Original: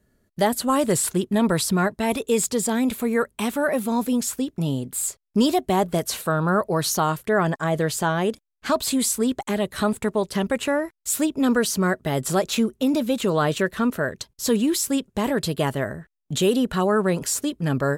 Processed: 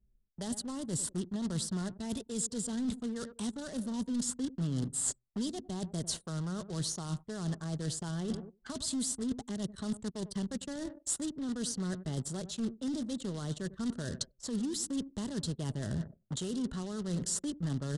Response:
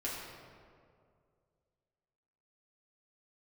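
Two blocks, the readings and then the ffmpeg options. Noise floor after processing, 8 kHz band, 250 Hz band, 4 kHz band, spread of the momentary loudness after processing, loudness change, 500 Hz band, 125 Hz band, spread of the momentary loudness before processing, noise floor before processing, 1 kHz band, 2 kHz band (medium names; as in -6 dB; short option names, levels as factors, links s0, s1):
-70 dBFS, -9.5 dB, -12.0 dB, -11.5 dB, 5 LU, -13.5 dB, -20.5 dB, -9.0 dB, 5 LU, -72 dBFS, -23.5 dB, -22.5 dB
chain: -filter_complex "[0:a]acrusher=bits=2:mode=log:mix=0:aa=0.000001,equalizer=f=2400:t=o:w=0.39:g=-13.5,asplit=2[s0][s1];[s1]adelay=98,lowpass=f=2600:p=1,volume=0.126,asplit=2[s2][s3];[s3]adelay=98,lowpass=f=2600:p=1,volume=0.53,asplit=2[s4][s5];[s5]adelay=98,lowpass=f=2600:p=1,volume=0.53,asplit=2[s6][s7];[s7]adelay=98,lowpass=f=2600:p=1,volume=0.53[s8];[s2][s4][s6][s8]amix=inputs=4:normalize=0[s9];[s0][s9]amix=inputs=2:normalize=0,aresample=22050,aresample=44100,areverse,acompressor=threshold=0.0251:ratio=16,areverse,anlmdn=0.0398,acrossover=split=280|3000[s10][s11][s12];[s11]acompressor=threshold=0.00224:ratio=4[s13];[s10][s13][s12]amix=inputs=3:normalize=0,adynamicequalizer=threshold=0.00158:dfrequency=3200:dqfactor=0.7:tfrequency=3200:tqfactor=0.7:attack=5:release=100:ratio=0.375:range=3:mode=cutabove:tftype=highshelf,volume=1.68"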